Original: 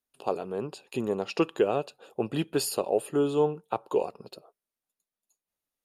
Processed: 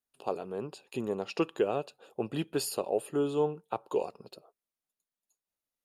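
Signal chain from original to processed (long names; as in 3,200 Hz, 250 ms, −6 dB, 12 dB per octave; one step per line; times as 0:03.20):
0:03.86–0:04.30: dynamic equaliser 5,600 Hz, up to +5 dB, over −56 dBFS, Q 1
level −4 dB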